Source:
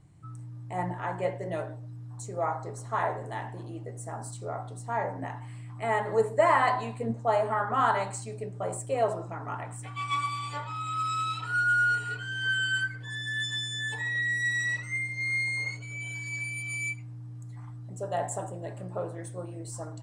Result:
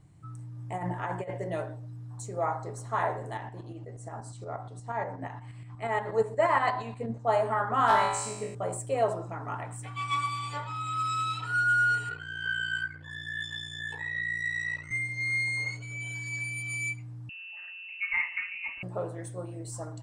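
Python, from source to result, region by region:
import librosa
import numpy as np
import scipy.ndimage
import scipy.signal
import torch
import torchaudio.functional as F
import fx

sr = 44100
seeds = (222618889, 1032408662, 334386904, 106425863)

y = fx.chain(x, sr, fx.over_compress(threshold_db=-32.0, ratio=-0.5),
    fx.notch(hz=4100.0, q=8.6), at=(0.58, 1.44))
y = fx.chain(y, sr, fx.lowpass(hz=7300.0, slope=12),
    fx.tremolo_shape(shape='saw_up', hz=8.4, depth_pct=55), at=(3.37, 7.3))
y = fx.chain(y, sr, fx.clip_hard(threshold_db=-18.5),
    fx.room_flutter(wall_m=3.3, rt60_s=0.76), at=(7.87, 8.55))
y = fx.chain(y, sr, fx.bass_treble(bass_db=-4, treble_db=-9),
    fx.ring_mod(carrier_hz=29.0), at=(12.09, 14.91))
y = fx.chain(y, sr, fx.comb(ms=3.2, depth=0.41),
    fx.freq_invert(carrier_hz=2800), at=(17.29, 18.83))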